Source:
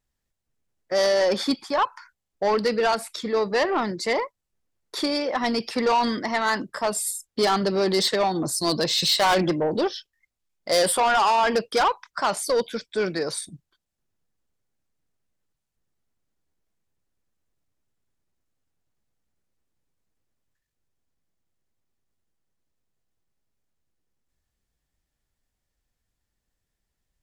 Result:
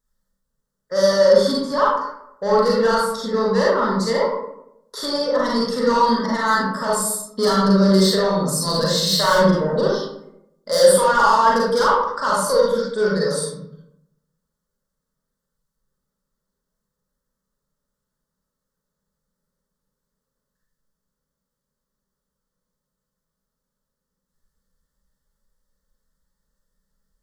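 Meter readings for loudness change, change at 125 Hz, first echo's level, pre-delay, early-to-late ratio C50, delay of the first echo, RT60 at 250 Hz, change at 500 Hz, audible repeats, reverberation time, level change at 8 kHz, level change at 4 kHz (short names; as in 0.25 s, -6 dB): +5.5 dB, +10.5 dB, none, 35 ms, -1.5 dB, none, 1.0 s, +6.5 dB, none, 0.80 s, +4.0 dB, +2.0 dB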